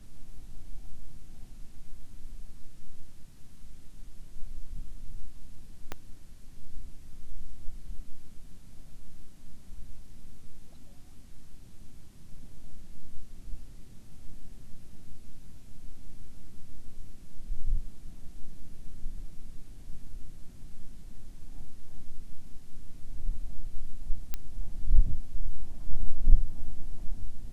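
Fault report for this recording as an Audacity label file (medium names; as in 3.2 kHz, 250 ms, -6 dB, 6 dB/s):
5.920000	5.920000	pop -18 dBFS
24.340000	24.340000	pop -15 dBFS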